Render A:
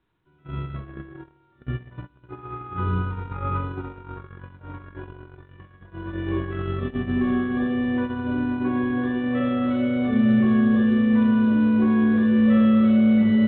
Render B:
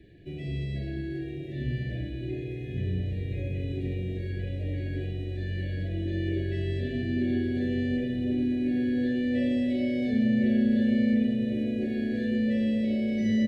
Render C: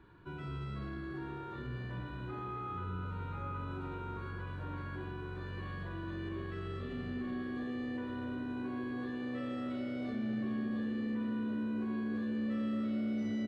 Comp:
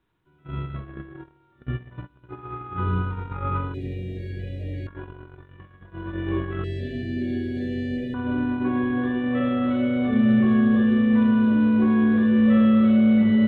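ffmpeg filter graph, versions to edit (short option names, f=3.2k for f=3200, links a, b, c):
-filter_complex "[1:a]asplit=2[a][b];[0:a]asplit=3[c][d][e];[c]atrim=end=3.742[f];[a]atrim=start=3.738:end=4.872[g];[d]atrim=start=4.868:end=6.642[h];[b]atrim=start=6.638:end=8.142[i];[e]atrim=start=8.138[j];[f][g]acrossfade=d=0.004:c1=hsin:c2=hsin[k];[k][h]acrossfade=d=0.004:c1=hsin:c2=hsin[l];[l][i]acrossfade=d=0.004:c1=hsin:c2=hsin[m];[m][j]acrossfade=d=0.004:c1=hsin:c2=hsin"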